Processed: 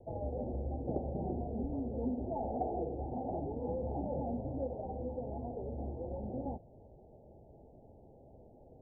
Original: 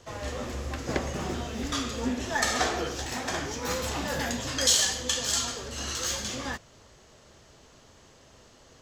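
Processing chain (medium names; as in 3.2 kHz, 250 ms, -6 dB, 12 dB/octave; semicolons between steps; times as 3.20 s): steep low-pass 840 Hz 96 dB/octave; compression 2:1, threshold -36 dBFS, peak gain reduction 7.5 dB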